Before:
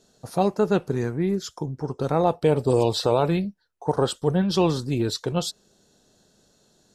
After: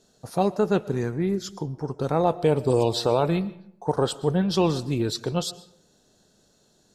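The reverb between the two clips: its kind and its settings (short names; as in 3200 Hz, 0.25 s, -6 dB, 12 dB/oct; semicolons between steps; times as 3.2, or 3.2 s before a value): digital reverb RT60 0.69 s, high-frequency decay 0.6×, pre-delay 80 ms, DRR 18 dB; gain -1 dB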